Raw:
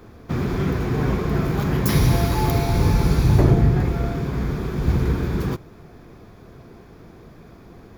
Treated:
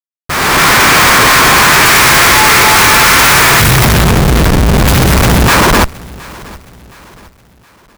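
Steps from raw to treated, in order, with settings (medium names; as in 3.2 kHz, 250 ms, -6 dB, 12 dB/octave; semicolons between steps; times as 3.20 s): formants flattened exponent 0.3; delay 290 ms -4 dB; time-frequency box 3.61–5.48 s, 240–10000 Hz -28 dB; companded quantiser 4-bit; on a send at -17 dB: reverberation RT60 1.9 s, pre-delay 74 ms; on the sum: crossover distortion -31.5 dBFS; high-order bell 1.5 kHz +12 dB; Schmitt trigger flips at -23.5 dBFS; level rider gain up to 11 dB; feedback delay 718 ms, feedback 42%, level -22 dB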